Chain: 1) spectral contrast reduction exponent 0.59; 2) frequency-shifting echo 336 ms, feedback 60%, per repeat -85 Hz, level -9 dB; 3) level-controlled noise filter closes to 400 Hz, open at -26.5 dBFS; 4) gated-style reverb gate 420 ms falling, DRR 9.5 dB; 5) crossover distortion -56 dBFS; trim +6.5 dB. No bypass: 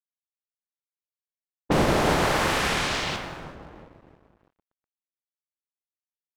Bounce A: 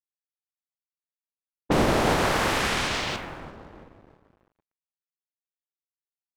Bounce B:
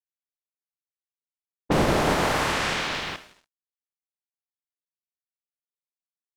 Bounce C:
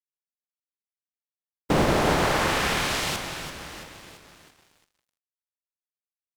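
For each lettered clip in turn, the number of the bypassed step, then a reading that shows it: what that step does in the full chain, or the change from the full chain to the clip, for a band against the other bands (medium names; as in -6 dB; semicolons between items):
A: 4, momentary loudness spread change +1 LU; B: 2, momentary loudness spread change -6 LU; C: 3, 8 kHz band +1.5 dB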